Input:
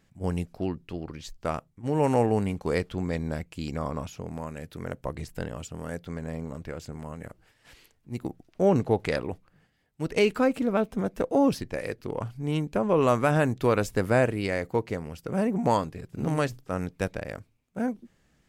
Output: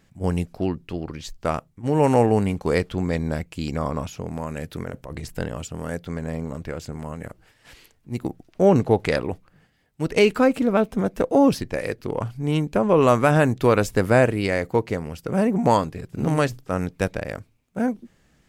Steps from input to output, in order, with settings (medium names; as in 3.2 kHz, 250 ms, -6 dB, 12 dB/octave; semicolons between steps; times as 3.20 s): 4.49–5.35 s: compressor with a negative ratio -37 dBFS, ratio -1; trim +5.5 dB